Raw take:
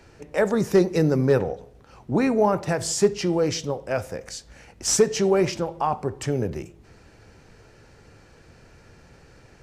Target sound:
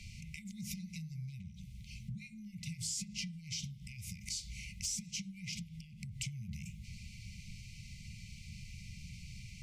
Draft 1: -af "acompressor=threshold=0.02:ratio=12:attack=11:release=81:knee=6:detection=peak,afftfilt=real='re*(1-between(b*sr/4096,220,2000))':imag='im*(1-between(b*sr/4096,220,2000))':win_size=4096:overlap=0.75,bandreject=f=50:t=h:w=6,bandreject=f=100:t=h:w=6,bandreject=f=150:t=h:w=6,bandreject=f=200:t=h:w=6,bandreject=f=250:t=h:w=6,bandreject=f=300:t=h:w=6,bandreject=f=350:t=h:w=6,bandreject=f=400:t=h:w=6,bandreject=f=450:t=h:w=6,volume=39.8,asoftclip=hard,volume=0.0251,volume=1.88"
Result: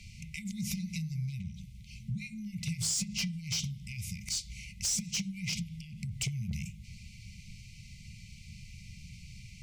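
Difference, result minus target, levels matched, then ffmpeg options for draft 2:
compression: peak gain reduction -8.5 dB
-af "acompressor=threshold=0.00708:ratio=12:attack=11:release=81:knee=6:detection=peak,afftfilt=real='re*(1-between(b*sr/4096,220,2000))':imag='im*(1-between(b*sr/4096,220,2000))':win_size=4096:overlap=0.75,bandreject=f=50:t=h:w=6,bandreject=f=100:t=h:w=6,bandreject=f=150:t=h:w=6,bandreject=f=200:t=h:w=6,bandreject=f=250:t=h:w=6,bandreject=f=300:t=h:w=6,bandreject=f=350:t=h:w=6,bandreject=f=400:t=h:w=6,bandreject=f=450:t=h:w=6,volume=39.8,asoftclip=hard,volume=0.0251,volume=1.88"

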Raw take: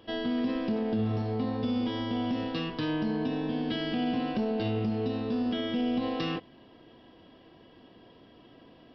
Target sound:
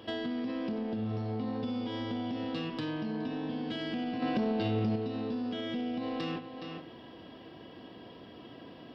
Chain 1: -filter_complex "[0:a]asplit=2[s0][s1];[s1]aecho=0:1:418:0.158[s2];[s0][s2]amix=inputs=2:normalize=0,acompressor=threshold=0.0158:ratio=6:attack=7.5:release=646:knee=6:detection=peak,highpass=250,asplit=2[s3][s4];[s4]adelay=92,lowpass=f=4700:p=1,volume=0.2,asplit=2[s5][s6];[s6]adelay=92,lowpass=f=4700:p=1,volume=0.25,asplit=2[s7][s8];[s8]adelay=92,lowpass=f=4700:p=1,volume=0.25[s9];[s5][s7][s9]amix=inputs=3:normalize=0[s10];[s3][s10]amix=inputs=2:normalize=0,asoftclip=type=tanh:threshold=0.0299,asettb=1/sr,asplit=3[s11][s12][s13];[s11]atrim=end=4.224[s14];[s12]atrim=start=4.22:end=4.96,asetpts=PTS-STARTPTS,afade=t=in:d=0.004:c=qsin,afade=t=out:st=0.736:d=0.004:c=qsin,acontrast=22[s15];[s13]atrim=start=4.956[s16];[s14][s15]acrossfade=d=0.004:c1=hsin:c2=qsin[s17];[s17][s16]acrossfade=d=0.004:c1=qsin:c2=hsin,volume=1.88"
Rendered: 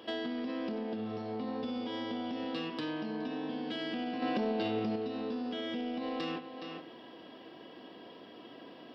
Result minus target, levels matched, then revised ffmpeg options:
125 Hz band -8.5 dB
-filter_complex "[0:a]asplit=2[s0][s1];[s1]aecho=0:1:418:0.158[s2];[s0][s2]amix=inputs=2:normalize=0,acompressor=threshold=0.0158:ratio=6:attack=7.5:release=646:knee=6:detection=peak,highpass=71,asplit=2[s3][s4];[s4]adelay=92,lowpass=f=4700:p=1,volume=0.2,asplit=2[s5][s6];[s6]adelay=92,lowpass=f=4700:p=1,volume=0.25,asplit=2[s7][s8];[s8]adelay=92,lowpass=f=4700:p=1,volume=0.25[s9];[s5][s7][s9]amix=inputs=3:normalize=0[s10];[s3][s10]amix=inputs=2:normalize=0,asoftclip=type=tanh:threshold=0.0299,asettb=1/sr,asplit=3[s11][s12][s13];[s11]atrim=end=4.224[s14];[s12]atrim=start=4.22:end=4.96,asetpts=PTS-STARTPTS,afade=t=in:d=0.004:c=qsin,afade=t=out:st=0.736:d=0.004:c=qsin,acontrast=22[s15];[s13]atrim=start=4.956[s16];[s14][s15]acrossfade=d=0.004:c1=hsin:c2=qsin[s17];[s17][s16]acrossfade=d=0.004:c1=qsin:c2=hsin,volume=1.88"

